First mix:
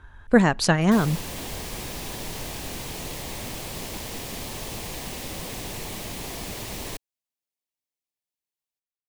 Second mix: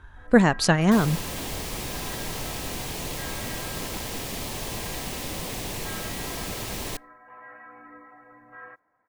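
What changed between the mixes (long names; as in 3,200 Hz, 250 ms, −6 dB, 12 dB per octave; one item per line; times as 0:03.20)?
first sound: unmuted
second sound: send on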